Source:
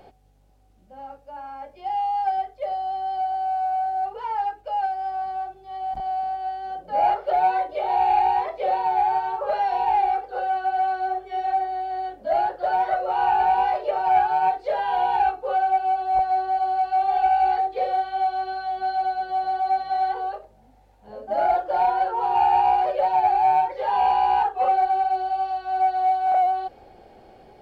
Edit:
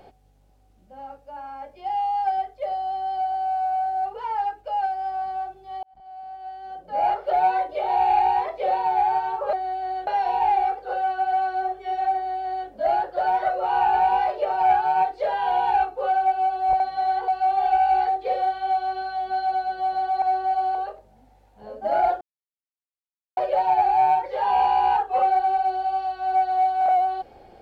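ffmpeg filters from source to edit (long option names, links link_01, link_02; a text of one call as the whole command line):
ffmpeg -i in.wav -filter_complex "[0:a]asplit=10[link_01][link_02][link_03][link_04][link_05][link_06][link_07][link_08][link_09][link_10];[link_01]atrim=end=5.83,asetpts=PTS-STARTPTS,afade=type=out:start_time=5.826:duration=0.004:curve=hsin[link_11];[link_02]atrim=start=5.83:end=9.532,asetpts=PTS-STARTPTS,afade=type=in:duration=1.54[link_12];[link_03]atrim=start=11.608:end=12.152[link_13];[link_04]atrim=start=9.528:end=16.262[link_14];[link_05]atrim=start=19.728:end=20.212[link_15];[link_06]atrim=start=16.788:end=19.732[link_16];[link_07]atrim=start=16.258:end=16.792[link_17];[link_08]atrim=start=20.208:end=21.67,asetpts=PTS-STARTPTS,afade=type=out:start_time=1.458:duration=0.004:curve=hsin[link_18];[link_09]atrim=start=21.67:end=22.83,asetpts=PTS-STARTPTS,volume=0[link_19];[link_10]atrim=start=22.83,asetpts=PTS-STARTPTS,afade=type=in:duration=0.004:curve=hsin[link_20];[link_11][link_12]concat=n=2:v=0:a=1[link_21];[link_21][link_13]acrossfade=duration=0.004:curve1=hsin:curve2=hsin[link_22];[link_22][link_14]acrossfade=duration=0.004:curve1=hsin:curve2=hsin[link_23];[link_23][link_15]acrossfade=duration=0.004:curve1=hsin:curve2=hsin[link_24];[link_24][link_16]acrossfade=duration=0.004:curve1=hsin:curve2=hsin[link_25];[link_25][link_17]acrossfade=duration=0.004:curve1=hsin:curve2=hsin[link_26];[link_18][link_19][link_20]concat=n=3:v=0:a=1[link_27];[link_26][link_27]acrossfade=duration=0.004:curve1=hsin:curve2=hsin" out.wav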